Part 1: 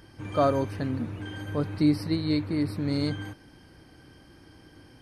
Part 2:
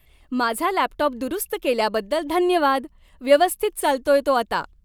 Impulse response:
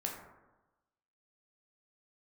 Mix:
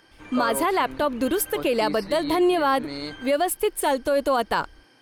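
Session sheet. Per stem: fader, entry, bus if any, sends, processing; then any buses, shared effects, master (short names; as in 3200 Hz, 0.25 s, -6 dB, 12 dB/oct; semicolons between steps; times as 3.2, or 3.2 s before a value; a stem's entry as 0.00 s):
+0.5 dB, 0.00 s, no send, weighting filter A
0.0 dB, 0.00 s, no send, AGC gain up to 3.5 dB; gate with hold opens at -46 dBFS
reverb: off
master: limiter -13 dBFS, peak gain reduction 11 dB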